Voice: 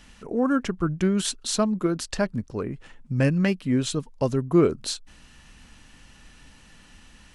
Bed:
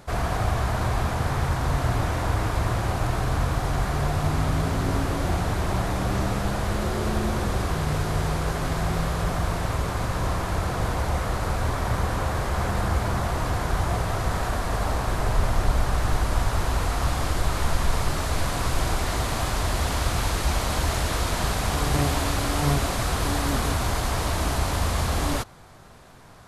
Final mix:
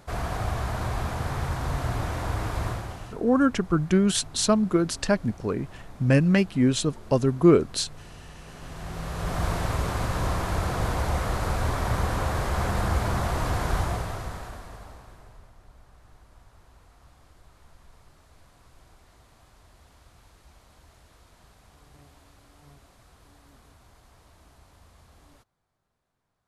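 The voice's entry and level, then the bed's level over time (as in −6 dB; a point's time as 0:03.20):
2.90 s, +2.0 dB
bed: 0:02.68 −4.5 dB
0:03.22 −21.5 dB
0:08.36 −21.5 dB
0:09.44 −1 dB
0:13.77 −1 dB
0:15.55 −31 dB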